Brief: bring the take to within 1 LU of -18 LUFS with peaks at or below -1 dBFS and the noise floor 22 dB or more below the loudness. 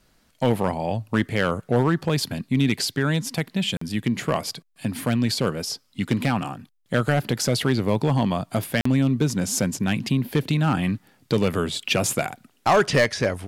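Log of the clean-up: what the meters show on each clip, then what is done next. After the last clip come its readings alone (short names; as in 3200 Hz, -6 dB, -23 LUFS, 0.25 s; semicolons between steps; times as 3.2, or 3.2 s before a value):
clipped 0.7%; flat tops at -12.0 dBFS; dropouts 2; longest dropout 44 ms; loudness -23.5 LUFS; peak -12.0 dBFS; loudness target -18.0 LUFS
-> clip repair -12 dBFS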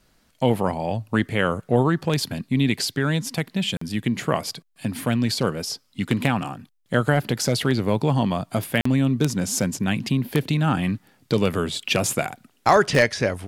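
clipped 0.0%; dropouts 2; longest dropout 44 ms
-> interpolate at 3.77/8.81, 44 ms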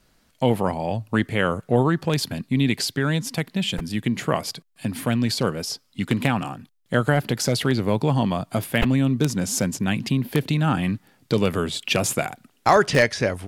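dropouts 0; loudness -23.0 LUFS; peak -3.0 dBFS; loudness target -18.0 LUFS
-> gain +5 dB; limiter -1 dBFS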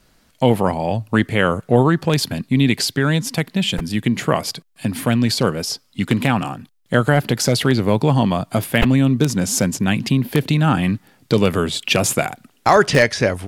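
loudness -18.5 LUFS; peak -1.0 dBFS; noise floor -58 dBFS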